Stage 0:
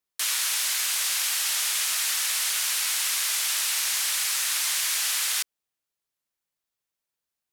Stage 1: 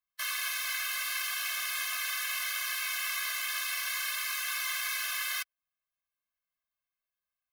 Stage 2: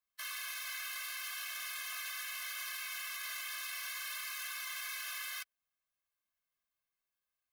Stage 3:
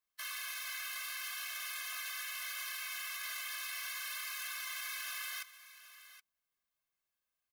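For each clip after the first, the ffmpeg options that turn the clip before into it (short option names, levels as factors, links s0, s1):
-af "equalizer=f=125:t=o:w=1:g=-10,equalizer=f=250:t=o:w=1:g=-6,equalizer=f=500:t=o:w=1:g=-9,equalizer=f=1000:t=o:w=1:g=3,equalizer=f=2000:t=o:w=1:g=4,equalizer=f=4000:t=o:w=1:g=-4,equalizer=f=8000:t=o:w=1:g=-12,afftfilt=real='re*eq(mod(floor(b*sr/1024/250),2),0)':imag='im*eq(mod(floor(b*sr/1024/250),2),0)':win_size=1024:overlap=0.75"
-af "alimiter=level_in=2.82:limit=0.0631:level=0:latency=1:release=10,volume=0.355"
-af "aecho=1:1:771:0.178"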